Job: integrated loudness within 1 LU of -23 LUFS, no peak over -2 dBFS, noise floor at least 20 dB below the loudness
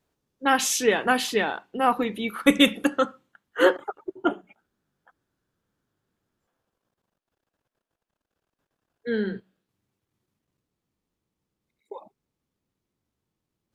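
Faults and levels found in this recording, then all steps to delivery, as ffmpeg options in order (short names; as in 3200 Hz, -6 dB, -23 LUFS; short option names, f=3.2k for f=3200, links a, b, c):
loudness -24.0 LUFS; peak -4.5 dBFS; loudness target -23.0 LUFS
-> -af "volume=1dB"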